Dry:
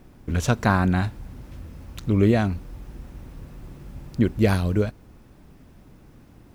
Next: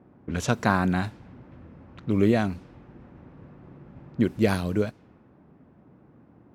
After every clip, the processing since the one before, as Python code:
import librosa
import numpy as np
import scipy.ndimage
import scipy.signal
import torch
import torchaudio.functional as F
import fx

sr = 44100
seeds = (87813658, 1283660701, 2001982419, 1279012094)

y = fx.env_lowpass(x, sr, base_hz=1200.0, full_db=-18.5)
y = scipy.signal.sosfilt(scipy.signal.butter(2, 130.0, 'highpass', fs=sr, output='sos'), y)
y = y * 10.0 ** (-1.5 / 20.0)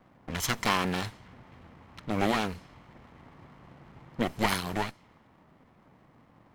y = fx.lower_of_two(x, sr, delay_ms=0.95)
y = fx.tilt_shelf(y, sr, db=-5.5, hz=790.0)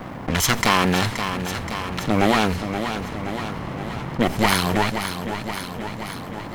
y = fx.echo_feedback(x, sr, ms=525, feedback_pct=51, wet_db=-16)
y = fx.env_flatten(y, sr, amount_pct=50)
y = y * 10.0 ** (7.0 / 20.0)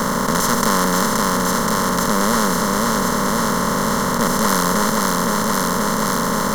y = fx.bin_compress(x, sr, power=0.2)
y = fx.fixed_phaser(y, sr, hz=500.0, stages=8)
y = y * 10.0 ** (-2.5 / 20.0)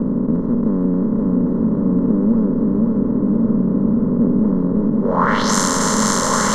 y = fx.filter_sweep_lowpass(x, sr, from_hz=310.0, to_hz=7400.0, start_s=5.01, end_s=5.53, q=2.8)
y = y + 10.0 ** (-5.5 / 20.0) * np.pad(y, (int(1120 * sr / 1000.0), 0))[:len(y)]